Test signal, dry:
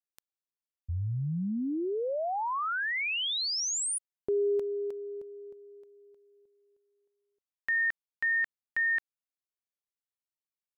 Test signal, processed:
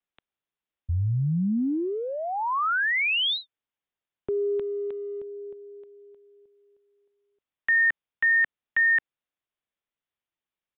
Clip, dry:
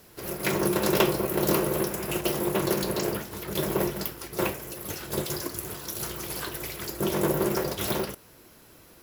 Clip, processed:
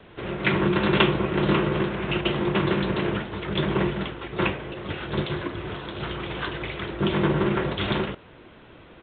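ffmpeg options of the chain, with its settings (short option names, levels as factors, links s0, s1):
-filter_complex "[0:a]acrossover=split=350|900|2500[s0][s1][s2][s3];[s1]acompressor=threshold=0.00631:ratio=6:attack=0.18:release=32:knee=1:detection=peak[s4];[s0][s4][s2][s3]amix=inputs=4:normalize=0,aresample=8000,aresample=44100,volume=2.24"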